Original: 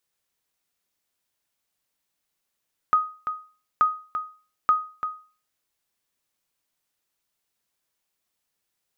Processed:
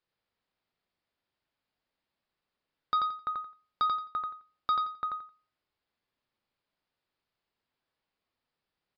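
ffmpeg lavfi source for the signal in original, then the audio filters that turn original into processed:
-f lavfi -i "aevalsrc='0.266*(sin(2*PI*1250*mod(t,0.88))*exp(-6.91*mod(t,0.88)/0.38)+0.335*sin(2*PI*1250*max(mod(t,0.88)-0.34,0))*exp(-6.91*max(mod(t,0.88)-0.34,0)/0.38))':duration=2.64:sample_rate=44100"
-af "highshelf=frequency=2000:gain=-7.5,aresample=11025,asoftclip=type=tanh:threshold=-23dB,aresample=44100,aecho=1:1:87|174|261:0.631|0.139|0.0305"

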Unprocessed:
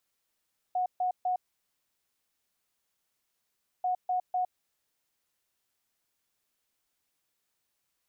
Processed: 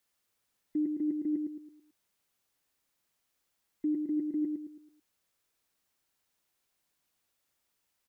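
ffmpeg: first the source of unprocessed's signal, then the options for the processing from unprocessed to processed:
-f lavfi -i "aevalsrc='0.0531*sin(2*PI*731*t)*clip(min(mod(mod(t,3.09),0.25),0.11-mod(mod(t,3.09),0.25))/0.005,0,1)*lt(mod(t,3.09),0.75)':duration=6.18:sample_rate=44100"
-filter_complex "[0:a]afftfilt=real='real(if(between(b,1,1008),(2*floor((b-1)/48)+1)*48-b,b),0)':imag='imag(if(between(b,1,1008),(2*floor((b-1)/48)+1)*48-b,b),0)*if(between(b,1,1008),-1,1)':win_size=2048:overlap=0.75,asplit=2[link_01][link_02];[link_02]adelay=110,lowpass=frequency=2000:poles=1,volume=-4.5dB,asplit=2[link_03][link_04];[link_04]adelay=110,lowpass=frequency=2000:poles=1,volume=0.39,asplit=2[link_05][link_06];[link_06]adelay=110,lowpass=frequency=2000:poles=1,volume=0.39,asplit=2[link_07][link_08];[link_08]adelay=110,lowpass=frequency=2000:poles=1,volume=0.39,asplit=2[link_09][link_10];[link_10]adelay=110,lowpass=frequency=2000:poles=1,volume=0.39[link_11];[link_03][link_05][link_07][link_09][link_11]amix=inputs=5:normalize=0[link_12];[link_01][link_12]amix=inputs=2:normalize=0"

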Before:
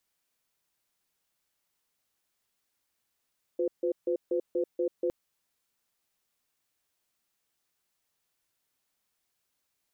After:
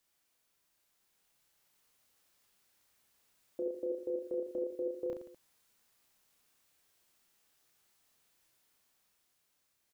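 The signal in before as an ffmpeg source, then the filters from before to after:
-f lavfi -i "aevalsrc='0.0398*(sin(2*PI*355*t)+sin(2*PI*508*t))*clip(min(mod(t,0.24),0.09-mod(t,0.24))/0.005,0,1)':duration=1.51:sample_rate=44100"
-filter_complex "[0:a]dynaudnorm=framelen=240:gausssize=11:maxgain=4.5dB,alimiter=level_in=5.5dB:limit=-24dB:level=0:latency=1:release=74,volume=-5.5dB,asplit=2[link_01][link_02];[link_02]aecho=0:1:30|67.5|114.4|173|246.2:0.631|0.398|0.251|0.158|0.1[link_03];[link_01][link_03]amix=inputs=2:normalize=0"

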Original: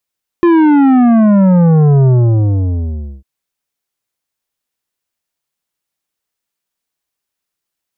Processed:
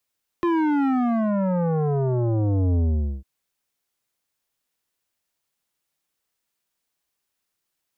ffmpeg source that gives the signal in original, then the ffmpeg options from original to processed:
-f lavfi -i "aevalsrc='0.473*clip((2.8-t)/1.16,0,1)*tanh(3.35*sin(2*PI*350*2.8/log(65/350)*(exp(log(65/350)*t/2.8)-1)))/tanh(3.35)':duration=2.8:sample_rate=44100"
-filter_complex "[0:a]acrossover=split=280|680[link_01][link_02][link_03];[link_01]acompressor=threshold=-19dB:ratio=6[link_04];[link_02]volume=14dB,asoftclip=hard,volume=-14dB[link_05];[link_04][link_05][link_03]amix=inputs=3:normalize=0,alimiter=limit=-17dB:level=0:latency=1"

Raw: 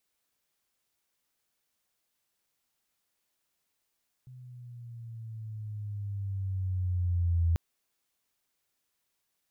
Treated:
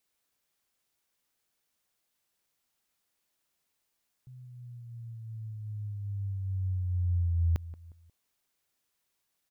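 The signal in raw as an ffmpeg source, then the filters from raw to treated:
-f lavfi -i "aevalsrc='pow(10,(-22+23.5*(t/3.29-1))/20)*sin(2*PI*128*3.29/(-7.5*log(2)/12)*(exp(-7.5*log(2)/12*t/3.29)-1))':duration=3.29:sample_rate=44100"
-filter_complex "[0:a]asplit=2[link_01][link_02];[link_02]adelay=179,lowpass=frequency=950:poles=1,volume=-17dB,asplit=2[link_03][link_04];[link_04]adelay=179,lowpass=frequency=950:poles=1,volume=0.4,asplit=2[link_05][link_06];[link_06]adelay=179,lowpass=frequency=950:poles=1,volume=0.4[link_07];[link_01][link_03][link_05][link_07]amix=inputs=4:normalize=0"

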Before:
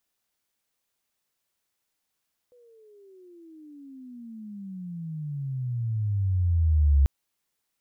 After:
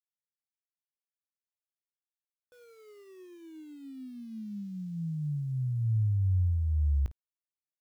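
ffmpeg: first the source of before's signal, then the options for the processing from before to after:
-f lavfi -i "aevalsrc='pow(10,(-15+38.5*(t/4.54-1))/20)*sin(2*PI*497*4.54/(-34.5*log(2)/12)*(exp(-34.5*log(2)/12*t/4.54)-1))':duration=4.54:sample_rate=44100"
-af "acompressor=threshold=-24dB:ratio=16,aeval=exprs='val(0)*gte(abs(val(0)),0.00158)':channel_layout=same,aecho=1:1:19|54:0.141|0.133"

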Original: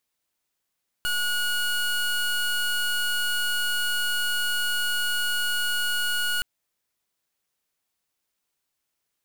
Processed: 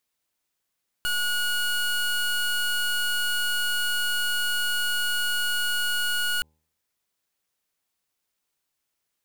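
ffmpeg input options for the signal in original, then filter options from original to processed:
-f lavfi -i "aevalsrc='0.0562*(2*lt(mod(1450*t,1),0.24)-1)':duration=5.37:sample_rate=44100"
-af "bandreject=frequency=78.3:width_type=h:width=4,bandreject=frequency=156.6:width_type=h:width=4,bandreject=frequency=234.9:width_type=h:width=4,bandreject=frequency=313.2:width_type=h:width=4,bandreject=frequency=391.5:width_type=h:width=4,bandreject=frequency=469.8:width_type=h:width=4,bandreject=frequency=548.1:width_type=h:width=4,bandreject=frequency=626.4:width_type=h:width=4,bandreject=frequency=704.7:width_type=h:width=4,bandreject=frequency=783:width_type=h:width=4,bandreject=frequency=861.3:width_type=h:width=4,bandreject=frequency=939.6:width_type=h:width=4,bandreject=frequency=1017.9:width_type=h:width=4"

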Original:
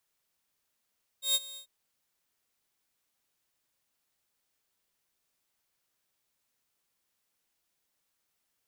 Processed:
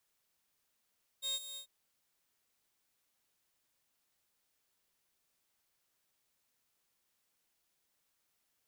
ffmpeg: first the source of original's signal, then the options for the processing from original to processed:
-f lavfi -i "aevalsrc='0.1*(2*mod(3720*t,1)-1)':duration=0.443:sample_rate=44100,afade=type=in:duration=0.13,afade=type=out:start_time=0.13:duration=0.037:silence=0.106,afade=type=out:start_time=0.35:duration=0.093"
-filter_complex "[0:a]acrossover=split=5000[link_01][link_02];[link_01]acompressor=threshold=-40dB:ratio=6[link_03];[link_02]asoftclip=type=tanh:threshold=-40dB[link_04];[link_03][link_04]amix=inputs=2:normalize=0"

